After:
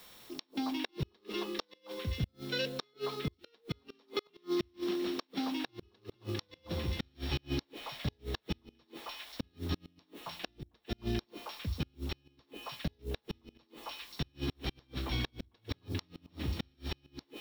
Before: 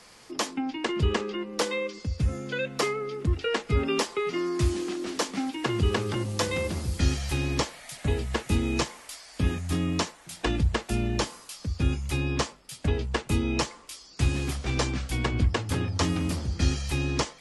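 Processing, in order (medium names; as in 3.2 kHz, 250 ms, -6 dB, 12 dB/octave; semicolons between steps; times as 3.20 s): sorted samples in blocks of 8 samples; four-pole ladder low-pass 4.3 kHz, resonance 60%; repeats whose band climbs or falls 134 ms, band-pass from 340 Hz, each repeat 1.4 oct, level -2.5 dB; added noise blue -64 dBFS; inverted gate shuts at -27 dBFS, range -37 dB; trim +5 dB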